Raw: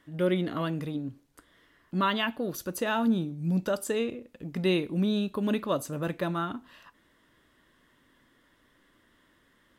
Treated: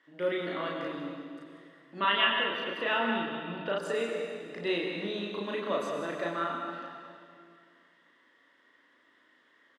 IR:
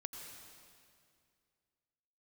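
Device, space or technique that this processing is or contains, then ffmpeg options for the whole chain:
station announcement: -filter_complex "[0:a]highpass=380,lowpass=4.8k,equalizer=f=1.9k:t=o:w=0.21:g=6,aecho=1:1:34.99|189.5:0.891|0.316[a];[1:a]atrim=start_sample=2205[b];[a][b]afir=irnorm=-1:irlink=0,asettb=1/sr,asplit=3[c][d][e];[c]atrim=end=2.004[f];[d]atrim=start=2:end=3.78,asetpts=PTS-STARTPTS,afade=t=in:d=0.004:c=qsin,afade=t=out:st=1.776:d=0.004:c=qsin,highshelf=f=4.4k:t=q:w=3:g=-13.5[g];[e]atrim=start=3.776[h];[f][g]acrossfade=d=0.004:c1=hsin:c2=qsin[i];[i][h]acrossfade=d=0.004:c1=qsin:c2=hsin"

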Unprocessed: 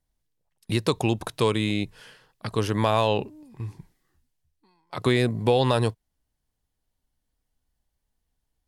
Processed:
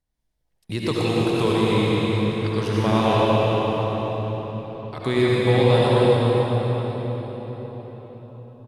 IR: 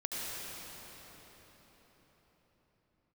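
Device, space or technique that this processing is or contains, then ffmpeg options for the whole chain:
cave: -filter_complex "[0:a]highshelf=f=6.8k:g=-6,aecho=1:1:296:0.376[a];[1:a]atrim=start_sample=2205[b];[a][b]afir=irnorm=-1:irlink=0"

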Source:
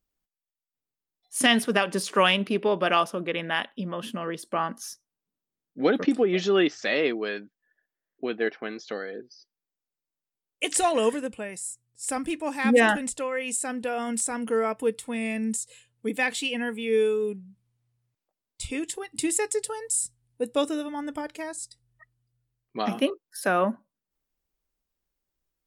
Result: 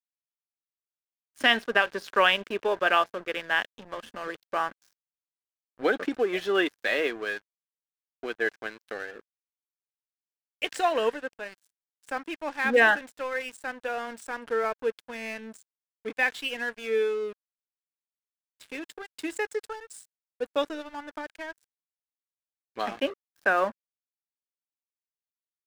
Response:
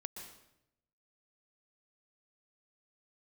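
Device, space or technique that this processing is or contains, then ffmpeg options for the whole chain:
pocket radio on a weak battery: -af "highpass=390,lowpass=4k,aeval=exprs='sgn(val(0))*max(abs(val(0))-0.00794,0)':c=same,equalizer=f=1.6k:t=o:w=0.21:g=8"

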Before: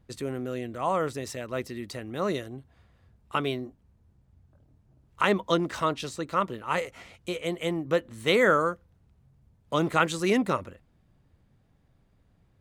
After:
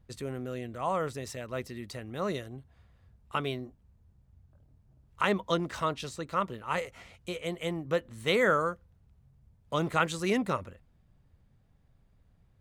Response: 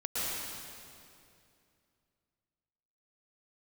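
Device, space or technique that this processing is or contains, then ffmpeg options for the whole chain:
low shelf boost with a cut just above: -af "lowshelf=f=89:g=7,equalizer=f=310:t=o:w=0.56:g=-4,volume=-3.5dB"

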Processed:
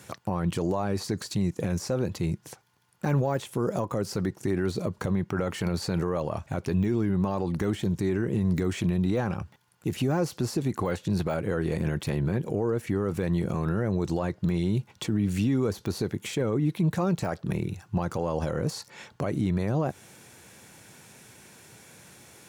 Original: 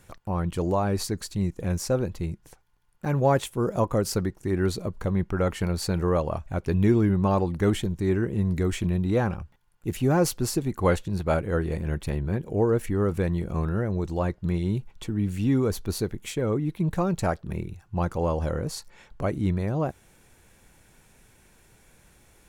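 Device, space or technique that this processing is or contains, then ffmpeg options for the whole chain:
broadcast voice chain: -af "highpass=f=100:w=0.5412,highpass=f=100:w=1.3066,deesser=1,acompressor=threshold=-27dB:ratio=5,equalizer=f=5.3k:t=o:w=1.2:g=4,alimiter=limit=-24dB:level=0:latency=1:release=30,volume=7dB"

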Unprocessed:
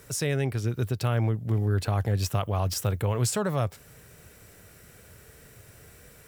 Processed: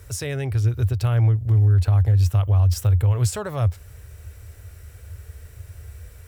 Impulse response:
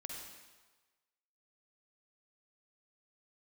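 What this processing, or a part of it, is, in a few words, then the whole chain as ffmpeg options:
car stereo with a boomy subwoofer: -af "lowshelf=f=120:t=q:w=3:g=12.5,alimiter=limit=-11.5dB:level=0:latency=1:release=114"

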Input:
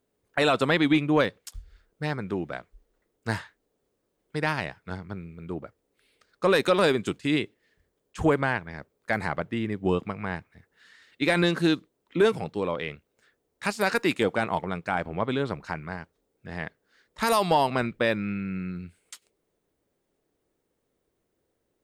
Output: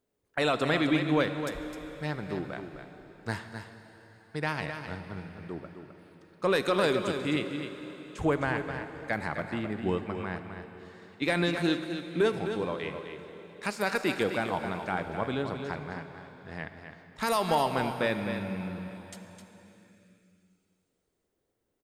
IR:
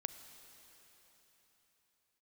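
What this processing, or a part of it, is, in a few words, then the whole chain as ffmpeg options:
cave: -filter_complex "[0:a]aecho=1:1:259:0.376[a];[1:a]atrim=start_sample=2205[b];[a][b]afir=irnorm=-1:irlink=0,volume=-2.5dB"

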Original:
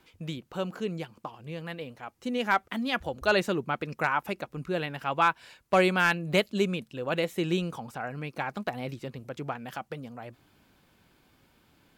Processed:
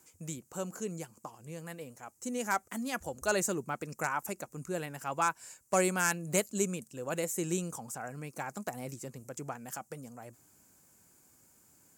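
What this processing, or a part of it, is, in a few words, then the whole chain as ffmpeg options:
budget condenser microphone: -af "highpass=62,highshelf=f=5.1k:t=q:w=3:g=13.5,volume=-5.5dB"

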